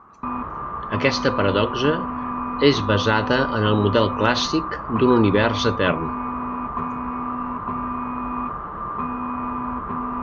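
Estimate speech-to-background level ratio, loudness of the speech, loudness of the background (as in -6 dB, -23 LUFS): 7.0 dB, -20.5 LUFS, -27.5 LUFS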